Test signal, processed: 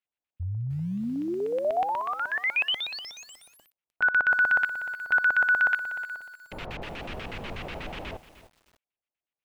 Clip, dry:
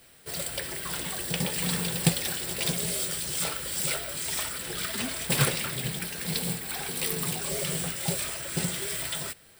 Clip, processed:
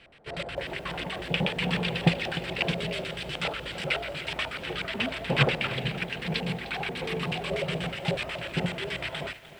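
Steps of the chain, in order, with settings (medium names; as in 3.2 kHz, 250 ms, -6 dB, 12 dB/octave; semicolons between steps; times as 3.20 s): LFO low-pass square 8.2 Hz 730–2700 Hz; bit-crushed delay 303 ms, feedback 35%, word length 8-bit, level -14 dB; trim +1.5 dB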